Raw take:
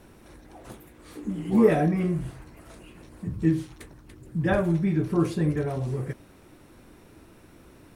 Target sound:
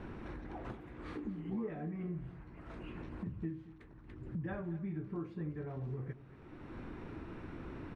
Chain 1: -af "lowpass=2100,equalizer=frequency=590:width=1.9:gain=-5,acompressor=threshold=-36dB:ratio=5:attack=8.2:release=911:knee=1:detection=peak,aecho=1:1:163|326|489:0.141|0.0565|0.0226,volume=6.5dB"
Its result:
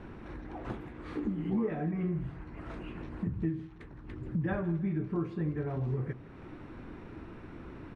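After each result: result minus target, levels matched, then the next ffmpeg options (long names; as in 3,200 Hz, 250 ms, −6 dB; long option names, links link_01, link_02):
downward compressor: peak gain reduction −8 dB; echo 67 ms early
-af "lowpass=2100,equalizer=frequency=590:width=1.9:gain=-5,acompressor=threshold=-46dB:ratio=5:attack=8.2:release=911:knee=1:detection=peak,aecho=1:1:163|326|489:0.141|0.0565|0.0226,volume=6.5dB"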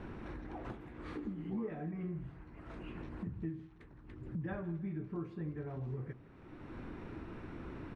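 echo 67 ms early
-af "lowpass=2100,equalizer=frequency=590:width=1.9:gain=-5,acompressor=threshold=-46dB:ratio=5:attack=8.2:release=911:knee=1:detection=peak,aecho=1:1:230|460|690:0.141|0.0565|0.0226,volume=6.5dB"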